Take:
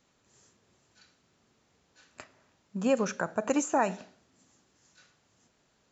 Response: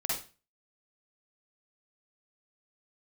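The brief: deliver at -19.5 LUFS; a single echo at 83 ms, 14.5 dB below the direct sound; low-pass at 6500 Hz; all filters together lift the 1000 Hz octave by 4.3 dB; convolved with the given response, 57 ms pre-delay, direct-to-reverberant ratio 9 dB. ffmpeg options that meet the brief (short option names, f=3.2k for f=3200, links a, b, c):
-filter_complex "[0:a]lowpass=6.5k,equalizer=f=1k:t=o:g=5.5,aecho=1:1:83:0.188,asplit=2[a][b];[1:a]atrim=start_sample=2205,adelay=57[c];[b][c]afir=irnorm=-1:irlink=0,volume=-15dB[d];[a][d]amix=inputs=2:normalize=0,volume=8dB"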